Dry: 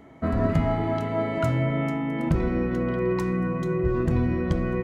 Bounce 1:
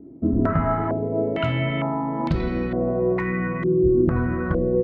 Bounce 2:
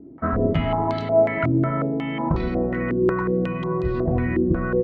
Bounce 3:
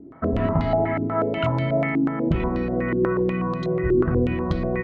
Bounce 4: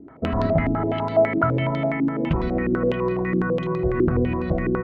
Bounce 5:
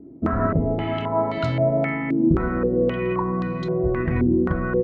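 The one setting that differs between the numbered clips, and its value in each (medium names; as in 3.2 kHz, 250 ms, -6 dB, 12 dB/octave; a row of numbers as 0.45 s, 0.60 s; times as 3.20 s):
step-sequenced low-pass, rate: 2.2 Hz, 5.5 Hz, 8.2 Hz, 12 Hz, 3.8 Hz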